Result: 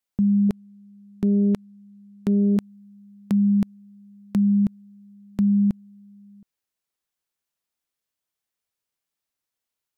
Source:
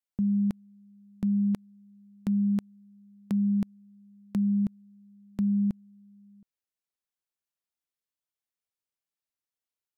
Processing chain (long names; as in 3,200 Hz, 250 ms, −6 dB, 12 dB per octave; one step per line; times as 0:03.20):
0:00.49–0:02.57: highs frequency-modulated by the lows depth 0.37 ms
level +6.5 dB